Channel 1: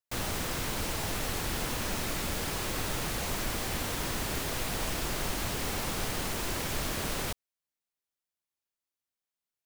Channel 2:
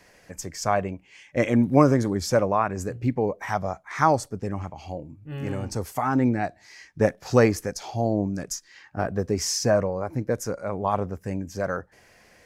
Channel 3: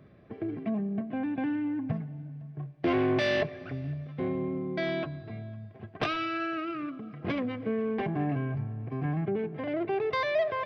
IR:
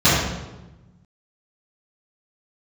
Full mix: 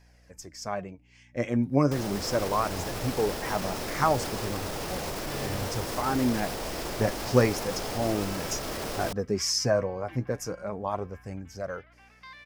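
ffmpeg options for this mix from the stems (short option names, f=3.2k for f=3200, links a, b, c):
-filter_complex "[0:a]equalizer=f=520:t=o:w=1.9:g=9,adelay=1800,volume=-3.5dB[a];[1:a]aeval=exprs='val(0)+0.00355*(sin(2*PI*60*n/s)+sin(2*PI*2*60*n/s)/2+sin(2*PI*3*60*n/s)/3+sin(2*PI*4*60*n/s)/4+sin(2*PI*5*60*n/s)/5)':c=same,flanger=delay=1.2:depth=7.1:regen=50:speed=0.35:shape=sinusoidal,volume=-6dB[b];[2:a]highpass=f=1.1k:w=0.5412,highpass=f=1.1k:w=1.3066,adelay=2100,volume=-14.5dB[c];[a][c]amix=inputs=2:normalize=0,alimiter=level_in=7dB:limit=-24dB:level=0:latency=1,volume=-7dB,volume=0dB[d];[b][d]amix=inputs=2:normalize=0,dynaudnorm=f=240:g=17:m=6dB,equalizer=f=5.2k:w=4.6:g=6"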